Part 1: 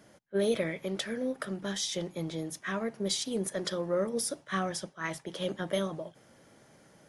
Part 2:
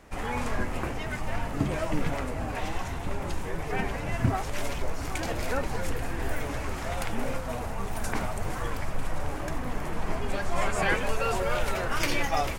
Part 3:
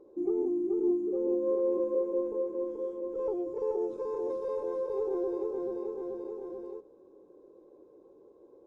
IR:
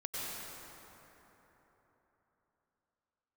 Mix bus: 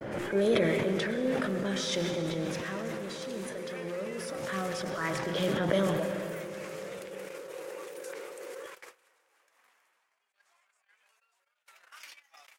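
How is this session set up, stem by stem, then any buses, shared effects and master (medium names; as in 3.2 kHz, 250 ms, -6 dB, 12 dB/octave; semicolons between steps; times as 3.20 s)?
2.35 s -1 dB -> 3.05 s -11.5 dB -> 4.21 s -11.5 dB -> 4.96 s 0 dB, 0.00 s, send -7 dB, level-controlled noise filter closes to 2.6 kHz, open at -28 dBFS; treble shelf 4.6 kHz -12 dB; swell ahead of each attack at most 48 dB/s
-2.5 dB, 0.00 s, send -19 dB, high-pass 1.5 kHz 12 dB/octave; compression 16:1, threshold -38 dBFS, peak gain reduction 13.5 dB; random flutter of the level, depth 60%
-18.0 dB, 0.00 s, send -11.5 dB, vowel filter e; level flattener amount 100%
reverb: on, RT60 3.9 s, pre-delay 88 ms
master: gate -42 dBFS, range -59 dB; decay stretcher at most 23 dB/s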